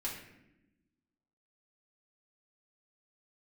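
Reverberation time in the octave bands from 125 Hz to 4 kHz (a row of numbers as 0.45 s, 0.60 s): 1.4 s, 1.6 s, 1.1 s, 0.75 s, 0.90 s, 0.60 s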